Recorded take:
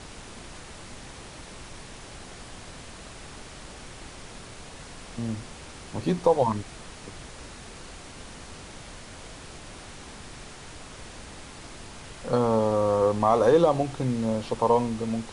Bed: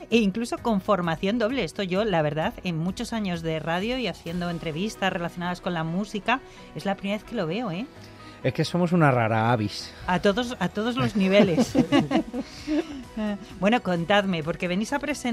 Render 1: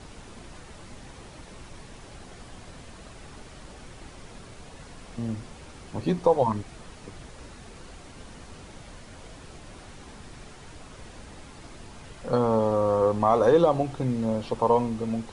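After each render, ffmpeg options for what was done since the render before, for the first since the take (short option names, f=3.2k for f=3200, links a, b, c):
-af "afftdn=nr=6:nf=-44"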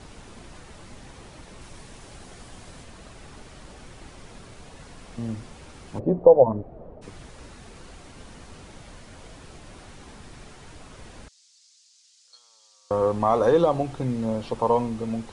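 -filter_complex "[0:a]asettb=1/sr,asplit=3[a][b][c];[a]atrim=end=1.614[d];[b]atrim=start=1.61:end=2.84,asetpts=PTS-STARTPTS,afade=t=in:d=0.004:c=qsin,afade=t=out:st=1.226:d=0.004:c=qsin,highshelf=f=6.4k:g=5.5[e];[c]atrim=start=2.836[f];[d][e]acrossfade=d=0.004:c1=hsin:c2=qsin[g];[g][f]acrossfade=d=0.004:c1=qsin:c2=hsin,asplit=3[h][i][j];[h]afade=t=out:st=5.98:d=0.02[k];[i]lowpass=f=590:t=q:w=3.1,afade=t=in:st=5.98:d=0.02,afade=t=out:st=7.01:d=0.02[l];[j]afade=t=in:st=7.01:d=0.02[m];[k][l][m]amix=inputs=3:normalize=0,asettb=1/sr,asplit=3[n][o][p];[n]atrim=end=11.284[q];[o]atrim=start=11.28:end=12.91,asetpts=PTS-STARTPTS,afade=t=in:d=0.004:c=qsin,afade=t=out:st=1.626:d=0.004:c=qsin,asuperpass=centerf=5800:order=4:qfactor=1.7[r];[p]atrim=start=12.906[s];[q][r]acrossfade=d=0.004:c1=hsin:c2=qsin[t];[t][s]acrossfade=d=0.004:c1=qsin:c2=hsin"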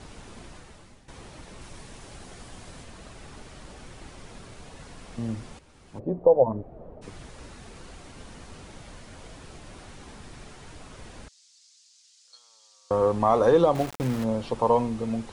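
-filter_complex "[0:a]asettb=1/sr,asplit=3[a][b][c];[a]atrim=end=13.754[d];[b]atrim=start=13.75:end=14.24,asetpts=PTS-STARTPTS,afade=t=in:d=0.004:c=qsin,afade=t=out:st=0.486:d=0.004:c=qsin,aeval=exprs='val(0)*gte(abs(val(0)),0.0266)':c=same[e];[c]atrim=start=14.236[f];[d][e]acrossfade=d=0.004:c1=hsin:c2=qsin[g];[g][f]acrossfade=d=0.004:c1=qsin:c2=hsin,asplit=3[h][i][j];[h]atrim=end=1.08,asetpts=PTS-STARTPTS,afade=t=out:st=0.44:d=0.64:silence=0.188365[k];[i]atrim=start=1.08:end=5.59,asetpts=PTS-STARTPTS,afade=t=in:d=0.004:c=hsin:silence=0.188365,afade=t=out:st=4.506:d=0.004:c=hsin:silence=0.237137[l];[j]atrim=start=5.59,asetpts=PTS-STARTPTS,afade=t=in:d=1.52:silence=0.237137[m];[k][l][m]concat=n=3:v=0:a=1"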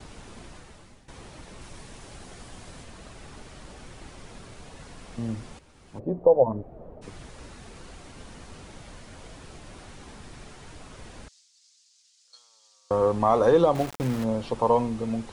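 -af "agate=range=-33dB:threshold=-54dB:ratio=3:detection=peak"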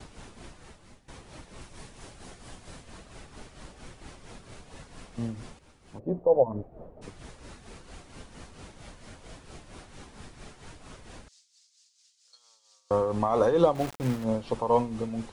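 -af "tremolo=f=4.4:d=0.59"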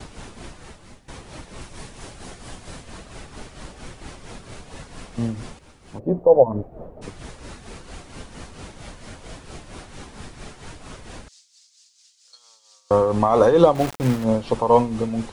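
-af "volume=8dB,alimiter=limit=-2dB:level=0:latency=1"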